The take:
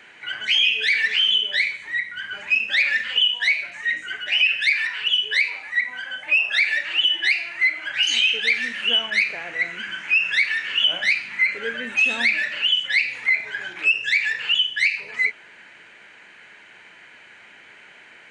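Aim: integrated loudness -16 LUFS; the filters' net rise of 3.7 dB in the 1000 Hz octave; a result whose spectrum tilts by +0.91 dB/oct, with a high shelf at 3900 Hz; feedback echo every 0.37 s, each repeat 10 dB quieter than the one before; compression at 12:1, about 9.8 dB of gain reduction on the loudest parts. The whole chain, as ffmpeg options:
-af "equalizer=f=1k:t=o:g=4.5,highshelf=f=3.9k:g=6.5,acompressor=threshold=-22dB:ratio=12,aecho=1:1:370|740|1110|1480:0.316|0.101|0.0324|0.0104,volume=8dB"

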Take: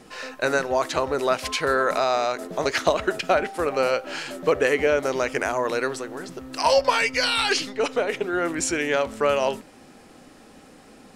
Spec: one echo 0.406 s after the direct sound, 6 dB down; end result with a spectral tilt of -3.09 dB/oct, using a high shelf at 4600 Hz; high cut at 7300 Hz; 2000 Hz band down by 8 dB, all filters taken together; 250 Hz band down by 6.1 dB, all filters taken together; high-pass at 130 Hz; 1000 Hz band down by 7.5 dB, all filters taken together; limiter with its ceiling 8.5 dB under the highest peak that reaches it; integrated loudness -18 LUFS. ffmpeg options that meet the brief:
-af "highpass=130,lowpass=7.3k,equalizer=f=250:t=o:g=-7.5,equalizer=f=1k:t=o:g=-7.5,equalizer=f=2k:t=o:g=-6.5,highshelf=f=4.6k:g=-7,alimiter=limit=-19dB:level=0:latency=1,aecho=1:1:406:0.501,volume=11.5dB"

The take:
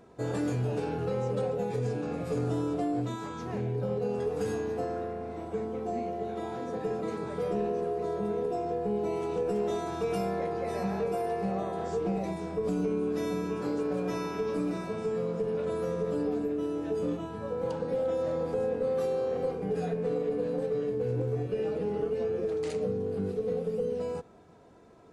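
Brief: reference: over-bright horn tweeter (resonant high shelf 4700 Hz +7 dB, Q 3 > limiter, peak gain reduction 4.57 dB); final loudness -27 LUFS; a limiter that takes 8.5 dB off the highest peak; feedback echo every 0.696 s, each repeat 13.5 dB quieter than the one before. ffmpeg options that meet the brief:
-af "alimiter=level_in=4.5dB:limit=-24dB:level=0:latency=1,volume=-4.5dB,highshelf=f=4.7k:t=q:w=3:g=7,aecho=1:1:696|1392:0.211|0.0444,volume=11dB,alimiter=limit=-19dB:level=0:latency=1"

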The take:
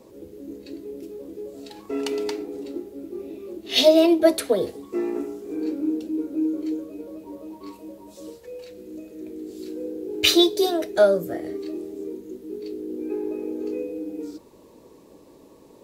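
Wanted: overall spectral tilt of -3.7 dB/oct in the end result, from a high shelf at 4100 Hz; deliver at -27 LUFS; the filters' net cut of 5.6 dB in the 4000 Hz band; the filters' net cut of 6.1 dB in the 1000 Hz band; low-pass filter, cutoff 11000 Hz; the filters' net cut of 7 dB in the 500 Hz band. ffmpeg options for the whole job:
-af "lowpass=11k,equalizer=f=500:t=o:g=-9,equalizer=f=1k:t=o:g=-3.5,equalizer=f=4k:t=o:g=-4,highshelf=f=4.1k:g=-4.5,volume=2.5dB"

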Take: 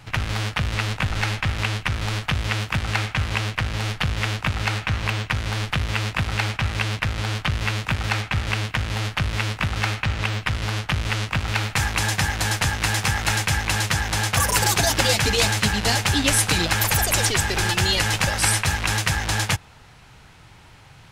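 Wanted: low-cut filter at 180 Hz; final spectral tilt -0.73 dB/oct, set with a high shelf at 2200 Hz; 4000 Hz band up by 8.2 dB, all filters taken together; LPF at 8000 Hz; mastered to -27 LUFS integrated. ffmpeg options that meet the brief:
-af "highpass=180,lowpass=8k,highshelf=f=2.2k:g=7,equalizer=f=4k:t=o:g=4,volume=-9dB"

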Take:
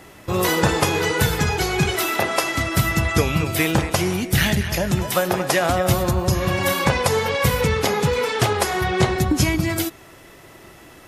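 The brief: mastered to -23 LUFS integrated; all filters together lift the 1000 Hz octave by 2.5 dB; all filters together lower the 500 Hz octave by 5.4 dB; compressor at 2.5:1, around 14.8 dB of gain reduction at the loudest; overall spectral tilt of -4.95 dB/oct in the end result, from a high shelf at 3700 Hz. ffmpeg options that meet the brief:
-af "equalizer=f=500:t=o:g=-8.5,equalizer=f=1k:t=o:g=6.5,highshelf=f=3.7k:g=-7.5,acompressor=threshold=-38dB:ratio=2.5,volume=11.5dB"

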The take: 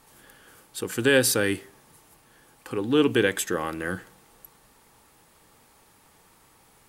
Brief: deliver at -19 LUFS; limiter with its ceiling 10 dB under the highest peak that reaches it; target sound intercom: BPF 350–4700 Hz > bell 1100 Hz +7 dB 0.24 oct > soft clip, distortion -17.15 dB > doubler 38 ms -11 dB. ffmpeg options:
-filter_complex "[0:a]alimiter=limit=-17dB:level=0:latency=1,highpass=350,lowpass=4.7k,equalizer=f=1.1k:t=o:w=0.24:g=7,asoftclip=threshold=-22.5dB,asplit=2[a][b];[b]adelay=38,volume=-11dB[c];[a][c]amix=inputs=2:normalize=0,volume=14dB"

